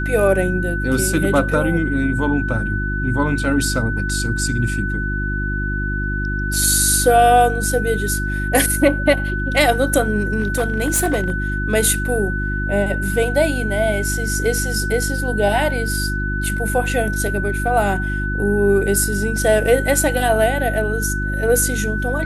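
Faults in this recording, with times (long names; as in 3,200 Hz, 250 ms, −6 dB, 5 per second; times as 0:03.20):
mains hum 50 Hz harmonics 7 −23 dBFS
whistle 1,500 Hz −24 dBFS
0:10.39–0:11.34: clipping −13 dBFS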